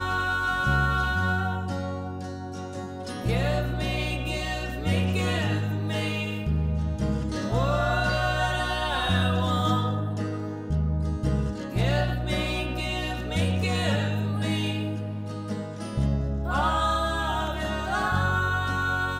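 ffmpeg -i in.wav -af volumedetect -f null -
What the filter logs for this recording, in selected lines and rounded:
mean_volume: -26.2 dB
max_volume: -11.5 dB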